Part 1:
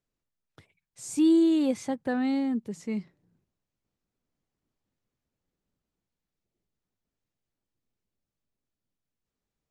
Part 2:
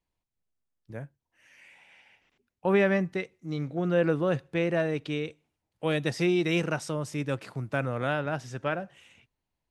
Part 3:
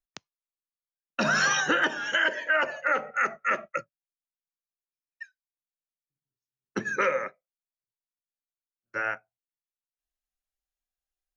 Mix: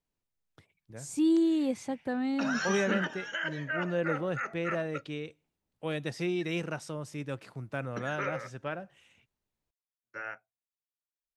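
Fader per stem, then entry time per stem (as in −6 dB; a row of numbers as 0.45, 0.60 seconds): −4.0, −6.5, −10.0 decibels; 0.00, 0.00, 1.20 seconds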